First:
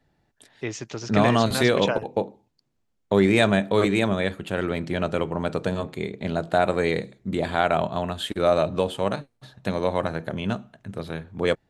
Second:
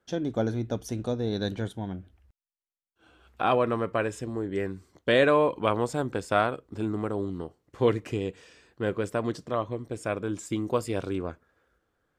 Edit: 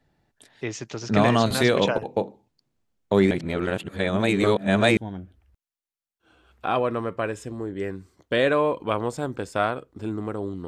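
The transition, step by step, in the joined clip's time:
first
3.31–4.97 reverse
4.97 switch to second from 1.73 s

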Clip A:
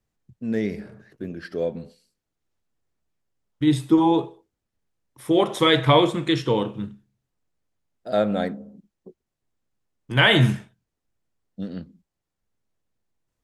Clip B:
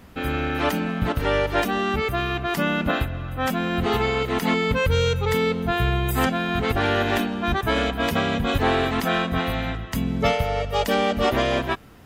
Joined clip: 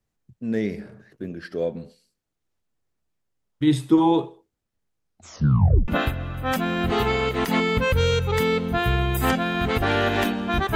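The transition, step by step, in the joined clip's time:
clip A
4.94 tape stop 0.94 s
5.88 switch to clip B from 2.82 s

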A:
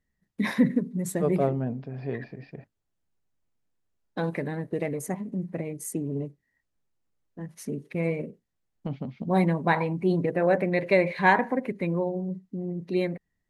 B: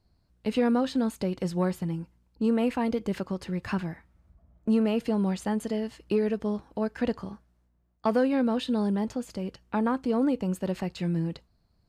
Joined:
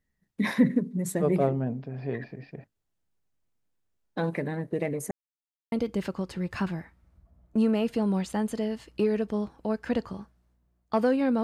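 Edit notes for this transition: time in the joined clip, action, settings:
A
5.11–5.72 mute
5.72 switch to B from 2.84 s

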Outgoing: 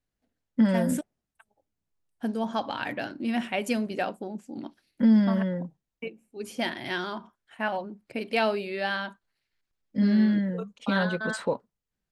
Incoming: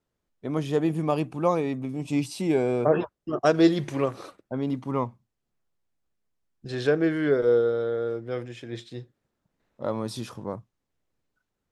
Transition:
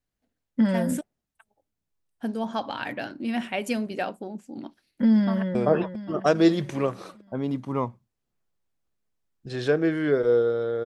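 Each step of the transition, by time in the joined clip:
outgoing
5.14–5.55 echo throw 0.4 s, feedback 50%, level -8.5 dB
5.55 switch to incoming from 2.74 s

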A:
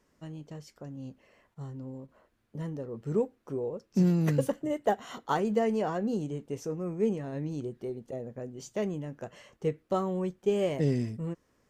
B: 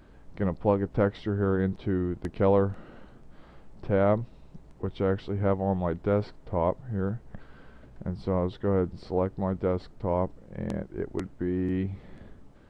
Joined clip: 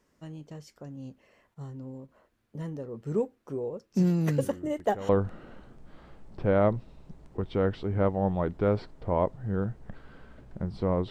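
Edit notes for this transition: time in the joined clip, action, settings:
A
4.37 add B from 1.82 s 0.72 s -16.5 dB
5.09 switch to B from 2.54 s

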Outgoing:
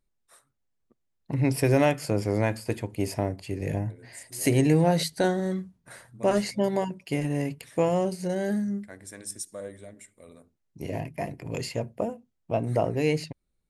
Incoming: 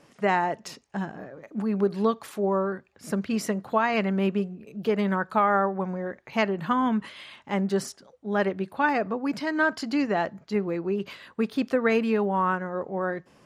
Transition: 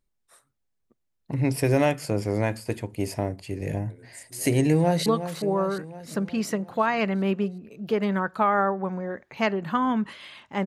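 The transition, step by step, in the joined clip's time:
outgoing
4.7–5.06 echo throw 0.36 s, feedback 60%, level -10.5 dB
5.06 switch to incoming from 2.02 s

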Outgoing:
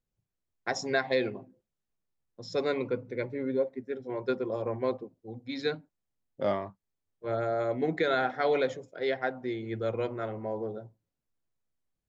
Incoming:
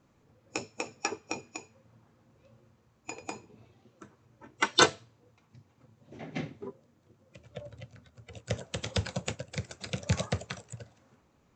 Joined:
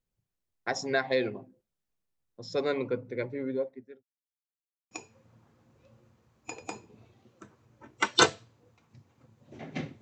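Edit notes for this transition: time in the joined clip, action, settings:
outgoing
3.14–4.03 fade out equal-power
4.03–4.91 mute
4.91 switch to incoming from 1.51 s

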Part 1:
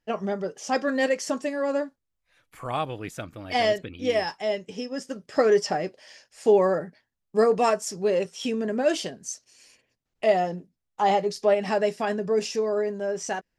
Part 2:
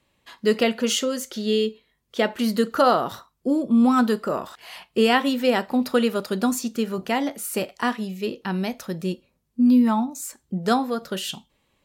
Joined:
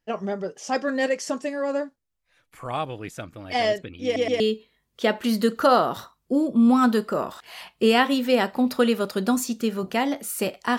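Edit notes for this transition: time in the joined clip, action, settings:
part 1
4.04 stutter in place 0.12 s, 3 plays
4.4 switch to part 2 from 1.55 s

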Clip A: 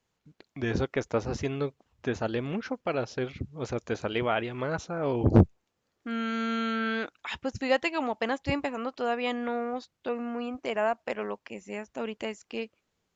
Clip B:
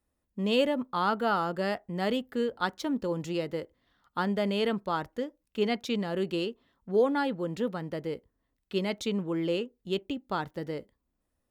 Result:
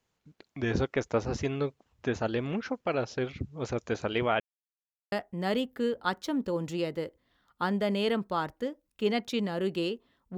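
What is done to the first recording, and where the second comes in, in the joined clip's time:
clip A
4.4–5.12 mute
5.12 switch to clip B from 1.68 s

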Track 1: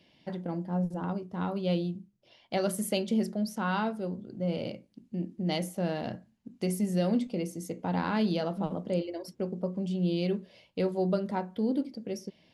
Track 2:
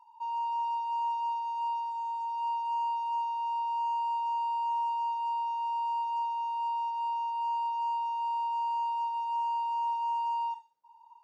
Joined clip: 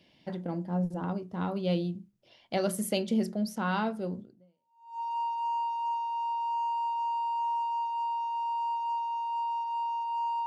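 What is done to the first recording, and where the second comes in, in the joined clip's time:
track 1
4.6 switch to track 2 from 1.87 s, crossfade 0.80 s exponential

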